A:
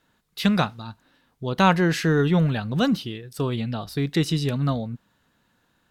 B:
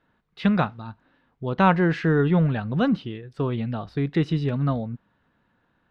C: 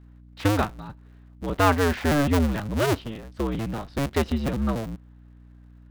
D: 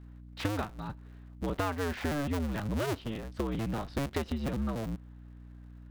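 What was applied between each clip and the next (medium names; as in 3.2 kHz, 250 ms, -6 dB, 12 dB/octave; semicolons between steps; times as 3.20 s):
low-pass 2.2 kHz 12 dB/octave
cycle switcher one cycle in 2, inverted; hum 60 Hz, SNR 23 dB; trim -1.5 dB
compression 10:1, threshold -29 dBFS, peak gain reduction 15 dB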